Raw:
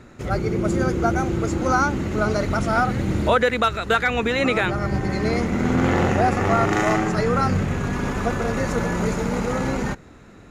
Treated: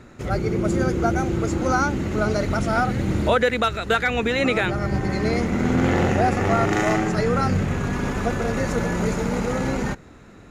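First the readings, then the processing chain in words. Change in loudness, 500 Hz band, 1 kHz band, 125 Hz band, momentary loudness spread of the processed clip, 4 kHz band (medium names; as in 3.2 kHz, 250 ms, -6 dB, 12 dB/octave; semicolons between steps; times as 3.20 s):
-0.5 dB, -0.5 dB, -1.5 dB, 0.0 dB, 5 LU, 0.0 dB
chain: dynamic bell 1.1 kHz, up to -4 dB, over -33 dBFS, Q 2.2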